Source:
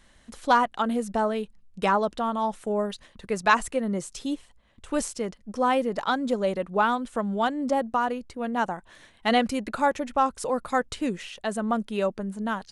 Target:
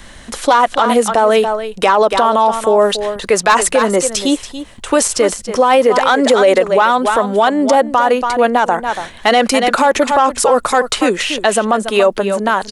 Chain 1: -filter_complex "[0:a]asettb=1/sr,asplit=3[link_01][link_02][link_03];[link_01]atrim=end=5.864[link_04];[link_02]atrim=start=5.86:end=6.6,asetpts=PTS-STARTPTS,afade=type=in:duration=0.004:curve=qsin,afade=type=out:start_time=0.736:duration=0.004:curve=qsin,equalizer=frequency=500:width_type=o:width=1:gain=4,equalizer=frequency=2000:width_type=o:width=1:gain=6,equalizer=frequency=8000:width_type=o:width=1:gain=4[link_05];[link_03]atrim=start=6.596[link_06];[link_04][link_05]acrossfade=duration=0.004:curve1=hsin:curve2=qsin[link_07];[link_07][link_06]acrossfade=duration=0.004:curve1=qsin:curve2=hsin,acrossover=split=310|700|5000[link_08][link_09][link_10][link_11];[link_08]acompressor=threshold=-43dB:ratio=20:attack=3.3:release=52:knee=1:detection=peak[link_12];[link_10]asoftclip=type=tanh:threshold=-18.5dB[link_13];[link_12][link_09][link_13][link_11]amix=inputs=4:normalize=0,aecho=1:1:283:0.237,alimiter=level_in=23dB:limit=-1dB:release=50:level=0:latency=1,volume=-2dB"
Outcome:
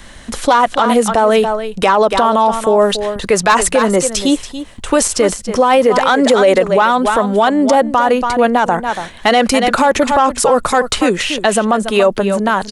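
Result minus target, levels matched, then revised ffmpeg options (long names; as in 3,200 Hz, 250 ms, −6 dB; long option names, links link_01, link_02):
downward compressor: peak gain reduction −10.5 dB
-filter_complex "[0:a]asettb=1/sr,asplit=3[link_01][link_02][link_03];[link_01]atrim=end=5.864[link_04];[link_02]atrim=start=5.86:end=6.6,asetpts=PTS-STARTPTS,afade=type=in:duration=0.004:curve=qsin,afade=type=out:start_time=0.736:duration=0.004:curve=qsin,equalizer=frequency=500:width_type=o:width=1:gain=4,equalizer=frequency=2000:width_type=o:width=1:gain=6,equalizer=frequency=8000:width_type=o:width=1:gain=4[link_05];[link_03]atrim=start=6.596[link_06];[link_04][link_05]acrossfade=duration=0.004:curve1=hsin:curve2=qsin[link_07];[link_07][link_06]acrossfade=duration=0.004:curve1=qsin:curve2=hsin,acrossover=split=310|700|5000[link_08][link_09][link_10][link_11];[link_08]acompressor=threshold=-54dB:ratio=20:attack=3.3:release=52:knee=1:detection=peak[link_12];[link_10]asoftclip=type=tanh:threshold=-18.5dB[link_13];[link_12][link_09][link_13][link_11]amix=inputs=4:normalize=0,aecho=1:1:283:0.237,alimiter=level_in=23dB:limit=-1dB:release=50:level=0:latency=1,volume=-2dB"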